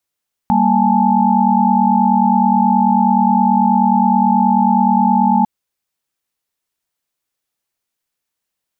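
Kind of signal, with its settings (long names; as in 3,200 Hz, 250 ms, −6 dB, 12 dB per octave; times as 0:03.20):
held notes G3/A#3/G#5/A5 sine, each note −15.5 dBFS 4.95 s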